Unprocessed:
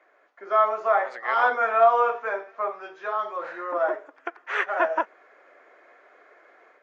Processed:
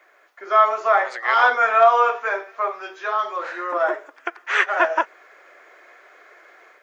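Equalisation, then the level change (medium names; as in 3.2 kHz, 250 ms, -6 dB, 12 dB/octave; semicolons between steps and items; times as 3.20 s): tilt EQ +3.5 dB/octave; peaking EQ 360 Hz +5 dB 0.39 oct; +4.5 dB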